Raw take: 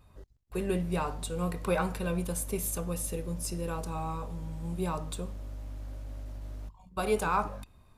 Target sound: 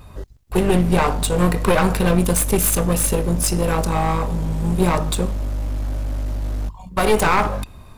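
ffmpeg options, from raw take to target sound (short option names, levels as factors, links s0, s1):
-af "aeval=exprs='clip(val(0),-1,0.0133)':c=same,alimiter=level_in=11.2:limit=0.891:release=50:level=0:latency=1,volume=0.668"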